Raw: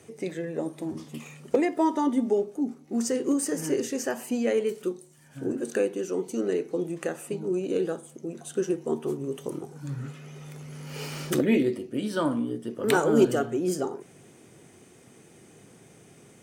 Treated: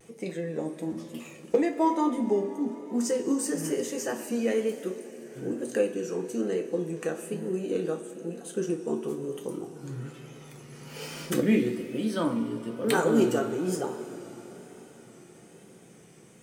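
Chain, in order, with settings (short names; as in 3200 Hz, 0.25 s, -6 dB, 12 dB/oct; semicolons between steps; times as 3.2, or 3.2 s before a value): two-slope reverb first 0.21 s, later 5 s, from -20 dB, DRR 3 dB; vibrato 1.1 Hz 54 cents; gain -3 dB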